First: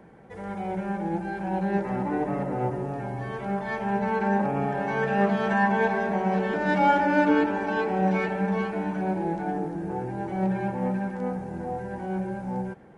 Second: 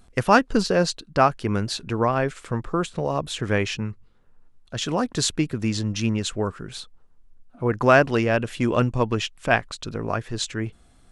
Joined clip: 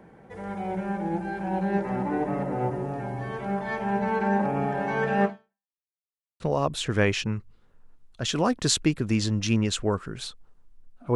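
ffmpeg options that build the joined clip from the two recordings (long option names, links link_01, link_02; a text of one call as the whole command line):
ffmpeg -i cue0.wav -i cue1.wav -filter_complex "[0:a]apad=whole_dur=11.15,atrim=end=11.15,asplit=2[link_01][link_02];[link_01]atrim=end=5.7,asetpts=PTS-STARTPTS,afade=type=out:start_time=5.25:duration=0.45:curve=exp[link_03];[link_02]atrim=start=5.7:end=6.4,asetpts=PTS-STARTPTS,volume=0[link_04];[1:a]atrim=start=2.93:end=7.68,asetpts=PTS-STARTPTS,afade=type=in:duration=0.004:curve=hsin[link_05];[link_03][link_04][link_05]concat=n=3:v=0:a=1" out.wav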